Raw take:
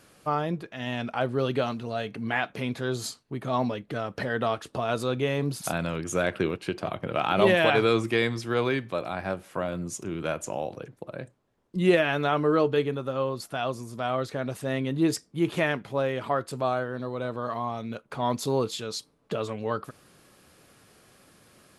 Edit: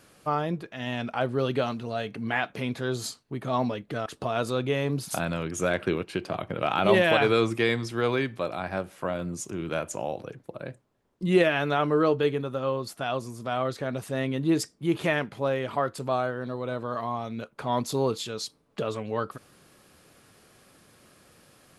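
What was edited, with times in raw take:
0:04.06–0:04.59: remove

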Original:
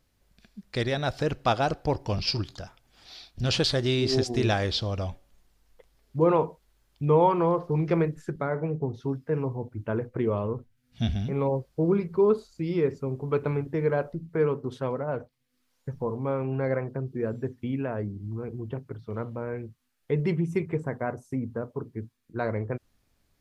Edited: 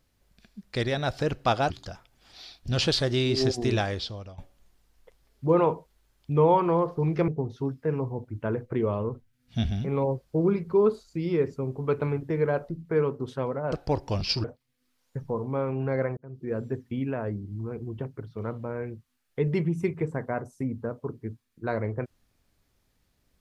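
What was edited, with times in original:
0:01.70–0:02.42: move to 0:15.16
0:04.37–0:05.10: fade out, to −19.5 dB
0:08.00–0:08.72: remove
0:16.89–0:17.30: fade in linear

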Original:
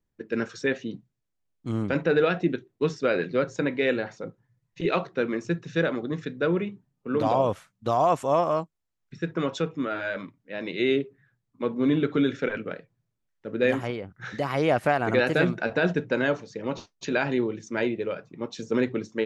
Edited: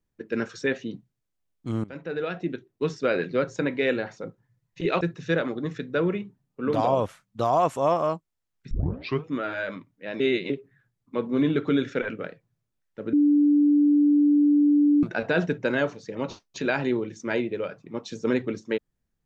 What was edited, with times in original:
0:01.84–0:03.08: fade in, from −17.5 dB
0:05.01–0:05.48: remove
0:09.18: tape start 0.53 s
0:10.67–0:10.97: reverse
0:13.60–0:15.50: beep over 292 Hz −15.5 dBFS

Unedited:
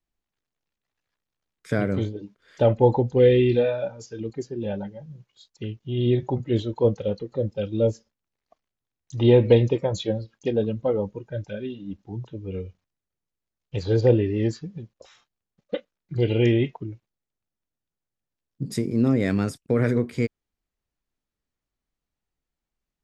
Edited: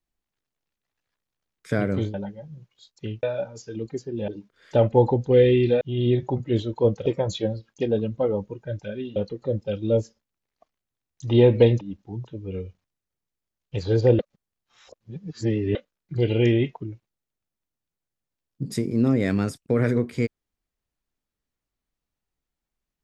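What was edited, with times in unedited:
0:02.14–0:03.67: swap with 0:04.72–0:05.81
0:09.71–0:11.81: move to 0:07.06
0:14.19–0:15.75: reverse

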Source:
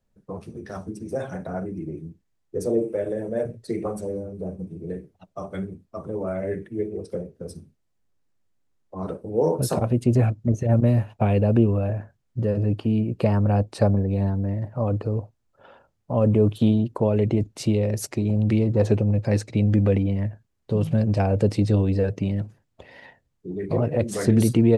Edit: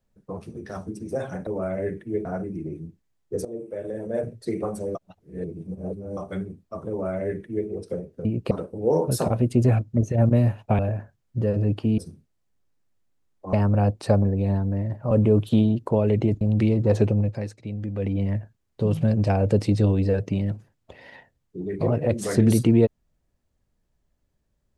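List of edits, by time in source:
0:02.67–0:03.49: fade in, from −17.5 dB
0:04.17–0:05.39: reverse
0:06.12–0:06.90: duplicate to 0:01.47
0:07.47–0:09.02: swap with 0:12.99–0:13.25
0:11.30–0:11.80: remove
0:14.83–0:16.20: remove
0:17.50–0:18.31: remove
0:19.07–0:20.14: duck −11.5 dB, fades 0.29 s

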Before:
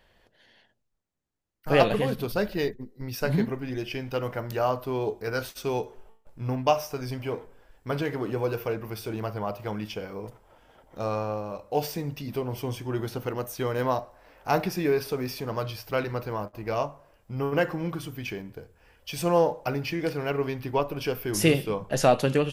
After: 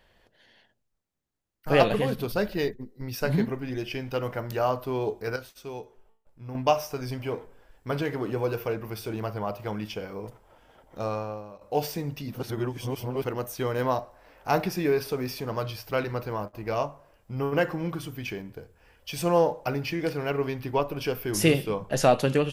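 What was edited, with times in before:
0:05.36–0:06.55: clip gain −9.5 dB
0:11.00–0:11.61: fade out, to −13.5 dB
0:12.34–0:13.24: reverse

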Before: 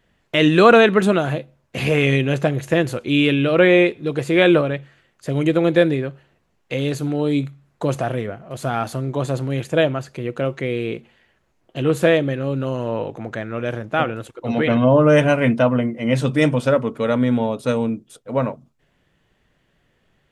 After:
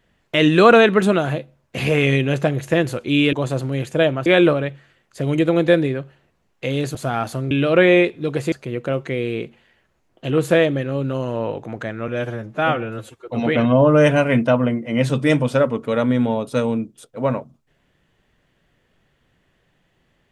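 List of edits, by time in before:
0:03.33–0:04.34: swap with 0:09.11–0:10.04
0:07.03–0:08.55: remove
0:13.60–0:14.40: time-stretch 1.5×

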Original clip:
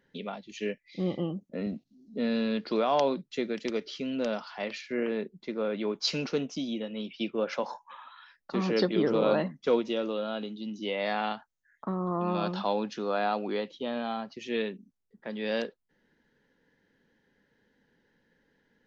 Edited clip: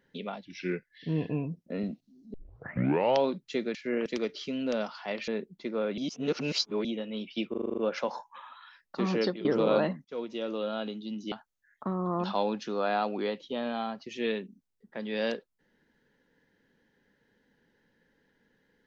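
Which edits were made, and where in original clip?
0:00.45–0:01.48: play speed 86%
0:02.17: tape start 0.88 s
0:04.80–0:05.11: move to 0:03.58
0:05.81–0:06.68: reverse
0:07.33: stutter 0.04 s, 8 plays
0:08.72–0:09.00: fade out, to −17.5 dB
0:09.60–0:10.21: fade in, from −22 dB
0:10.87–0:11.33: remove
0:12.25–0:12.54: remove

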